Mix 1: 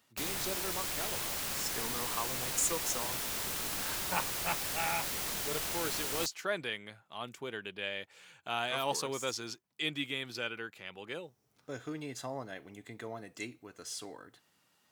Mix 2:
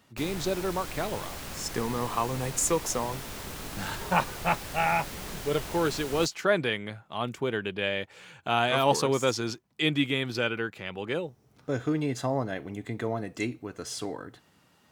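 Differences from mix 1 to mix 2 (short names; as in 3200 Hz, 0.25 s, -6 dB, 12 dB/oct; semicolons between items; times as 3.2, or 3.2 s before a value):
speech +9.5 dB; master: add tilt -2 dB/oct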